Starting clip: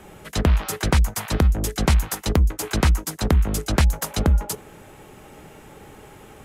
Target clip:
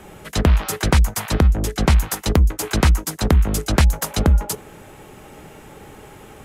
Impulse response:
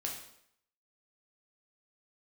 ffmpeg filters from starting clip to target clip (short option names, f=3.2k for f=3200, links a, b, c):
-filter_complex "[0:a]asettb=1/sr,asplit=3[a][b][c];[a]atrim=end=1.344[d];[b]atrim=start=1.34:end=1.94,asetpts=PTS-STARTPTS,afade=t=in:d=0.004:c=qsin,afade=t=out:st=0.596:d=0.004:c=qsin,highshelf=f=5.8k:g=-6[e];[c]atrim=start=1.936[f];[d][e]acrossfade=d=0.004:c1=hsin:c2=qsin[g];[g][f]acrossfade=d=0.004:c1=qsin:c2=hsin,volume=3dB"